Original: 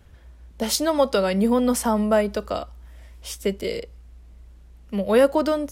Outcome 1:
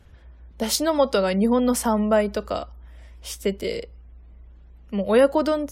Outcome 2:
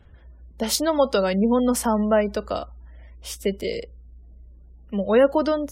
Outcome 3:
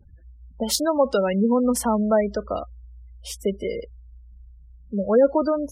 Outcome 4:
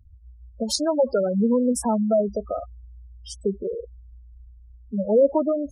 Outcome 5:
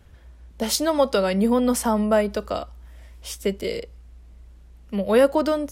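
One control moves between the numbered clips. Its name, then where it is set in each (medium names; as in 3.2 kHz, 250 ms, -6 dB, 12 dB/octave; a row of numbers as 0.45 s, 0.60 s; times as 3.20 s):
spectral gate, under each frame's peak: -45 dB, -35 dB, -20 dB, -10 dB, -60 dB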